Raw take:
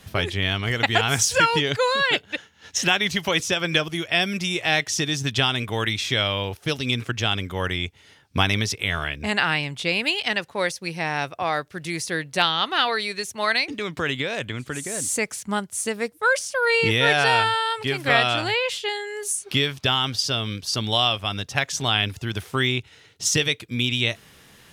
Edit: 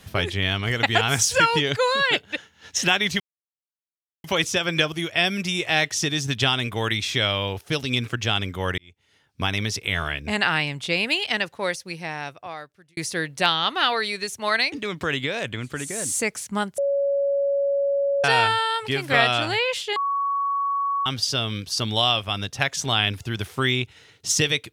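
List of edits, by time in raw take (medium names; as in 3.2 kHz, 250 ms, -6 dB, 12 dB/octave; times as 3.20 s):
3.20 s: insert silence 1.04 s
7.74–8.90 s: fade in
10.35–11.93 s: fade out
15.74–17.20 s: bleep 560 Hz -19 dBFS
18.92–20.02 s: bleep 1.12 kHz -21 dBFS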